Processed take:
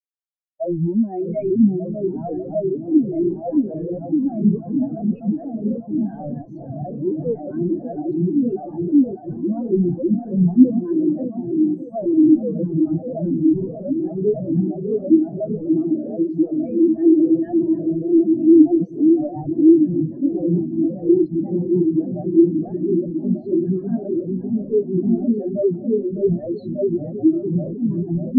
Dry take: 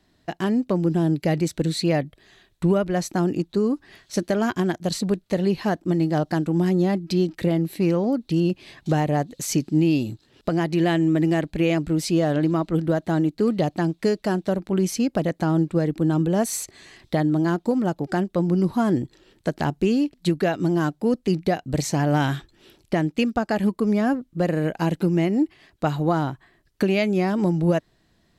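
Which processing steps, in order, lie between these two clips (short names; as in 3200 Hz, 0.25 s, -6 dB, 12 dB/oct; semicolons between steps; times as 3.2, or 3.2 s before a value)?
whole clip reversed; repeats that get brighter 0.596 s, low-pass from 400 Hz, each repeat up 1 oct, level 0 dB; overdrive pedal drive 37 dB, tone 6200 Hz, clips at -2.5 dBFS; echoes that change speed 0.467 s, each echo -5 st, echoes 3, each echo -6 dB; spectral expander 4:1; gain -1.5 dB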